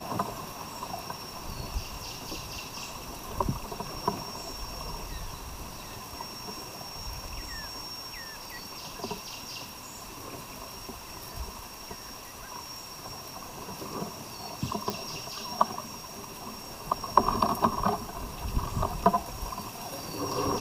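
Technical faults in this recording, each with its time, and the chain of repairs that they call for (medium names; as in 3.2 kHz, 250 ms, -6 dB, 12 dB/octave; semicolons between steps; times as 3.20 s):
14.90 s: pop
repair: de-click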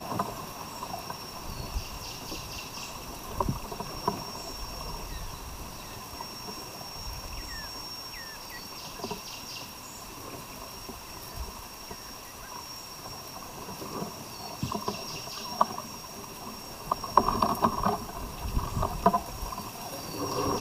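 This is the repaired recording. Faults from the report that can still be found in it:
nothing left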